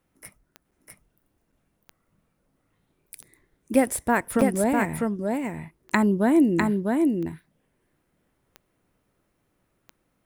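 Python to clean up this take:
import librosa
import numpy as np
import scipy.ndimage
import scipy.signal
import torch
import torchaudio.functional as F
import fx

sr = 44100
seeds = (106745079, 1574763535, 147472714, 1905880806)

y = fx.fix_declick_ar(x, sr, threshold=10.0)
y = fx.fix_interpolate(y, sr, at_s=(0.71, 1.52, 1.85, 3.22, 4.41, 5.9), length_ms=5.8)
y = fx.fix_echo_inverse(y, sr, delay_ms=651, level_db=-3.5)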